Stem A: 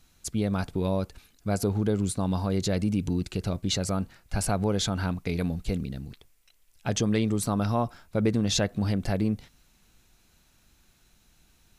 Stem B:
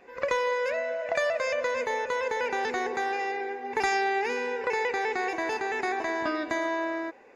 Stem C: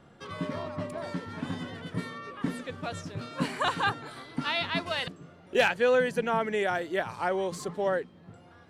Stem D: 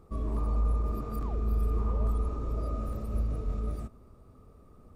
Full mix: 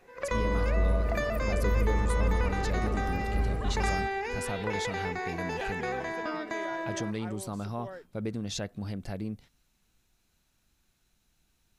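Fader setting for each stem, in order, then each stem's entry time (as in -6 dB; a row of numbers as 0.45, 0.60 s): -9.5, -5.5, -15.5, +1.0 dB; 0.00, 0.00, 0.00, 0.20 s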